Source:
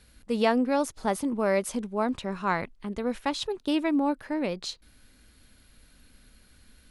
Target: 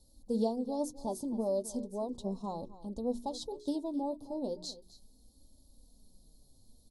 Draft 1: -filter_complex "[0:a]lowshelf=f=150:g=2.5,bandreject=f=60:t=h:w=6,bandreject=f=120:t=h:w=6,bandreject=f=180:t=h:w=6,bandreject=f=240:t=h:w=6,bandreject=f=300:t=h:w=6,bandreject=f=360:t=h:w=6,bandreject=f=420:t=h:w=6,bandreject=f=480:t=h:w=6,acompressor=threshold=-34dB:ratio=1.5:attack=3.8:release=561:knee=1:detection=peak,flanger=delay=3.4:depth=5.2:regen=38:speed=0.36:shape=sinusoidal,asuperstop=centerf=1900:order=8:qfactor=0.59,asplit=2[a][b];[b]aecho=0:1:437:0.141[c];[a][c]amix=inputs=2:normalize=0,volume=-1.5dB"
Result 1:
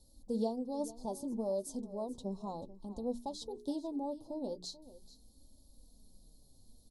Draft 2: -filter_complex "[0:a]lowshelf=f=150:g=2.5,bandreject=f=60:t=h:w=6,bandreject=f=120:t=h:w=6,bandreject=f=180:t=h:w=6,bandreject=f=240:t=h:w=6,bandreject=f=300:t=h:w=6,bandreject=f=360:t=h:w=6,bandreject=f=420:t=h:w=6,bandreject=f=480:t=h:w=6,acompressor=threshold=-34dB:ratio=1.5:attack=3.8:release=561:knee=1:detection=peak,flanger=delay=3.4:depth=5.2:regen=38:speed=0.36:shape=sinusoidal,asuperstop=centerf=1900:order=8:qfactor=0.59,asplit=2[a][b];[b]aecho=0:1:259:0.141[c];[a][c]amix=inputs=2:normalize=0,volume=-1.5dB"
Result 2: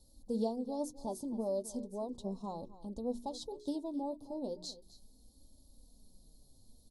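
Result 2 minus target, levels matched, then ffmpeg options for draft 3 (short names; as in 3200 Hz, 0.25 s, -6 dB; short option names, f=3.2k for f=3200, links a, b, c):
compressor: peak gain reduction +3 dB
-filter_complex "[0:a]lowshelf=f=150:g=2.5,bandreject=f=60:t=h:w=6,bandreject=f=120:t=h:w=6,bandreject=f=180:t=h:w=6,bandreject=f=240:t=h:w=6,bandreject=f=300:t=h:w=6,bandreject=f=360:t=h:w=6,bandreject=f=420:t=h:w=6,bandreject=f=480:t=h:w=6,acompressor=threshold=-24.5dB:ratio=1.5:attack=3.8:release=561:knee=1:detection=peak,flanger=delay=3.4:depth=5.2:regen=38:speed=0.36:shape=sinusoidal,asuperstop=centerf=1900:order=8:qfactor=0.59,asplit=2[a][b];[b]aecho=0:1:259:0.141[c];[a][c]amix=inputs=2:normalize=0,volume=-1.5dB"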